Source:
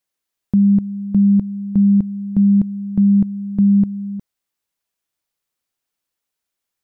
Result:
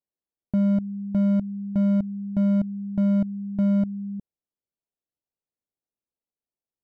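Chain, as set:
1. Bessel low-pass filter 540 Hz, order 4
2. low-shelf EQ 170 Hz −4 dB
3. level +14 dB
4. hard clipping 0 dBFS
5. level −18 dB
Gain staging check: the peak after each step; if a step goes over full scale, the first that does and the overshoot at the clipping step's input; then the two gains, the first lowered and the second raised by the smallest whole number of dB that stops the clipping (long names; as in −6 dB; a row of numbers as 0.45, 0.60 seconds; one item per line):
−9.0, −10.5, +3.5, 0.0, −18.0 dBFS
step 3, 3.5 dB
step 3 +10 dB, step 5 −14 dB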